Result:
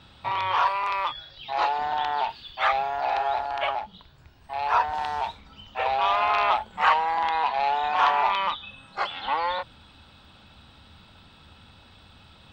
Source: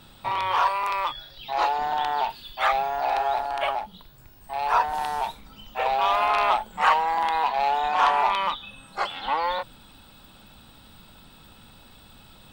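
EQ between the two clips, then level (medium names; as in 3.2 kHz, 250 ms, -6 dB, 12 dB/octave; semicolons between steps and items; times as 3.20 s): distance through air 160 m; tilt EQ +2 dB/octave; peaking EQ 79 Hz +12.5 dB 1.1 oct; 0.0 dB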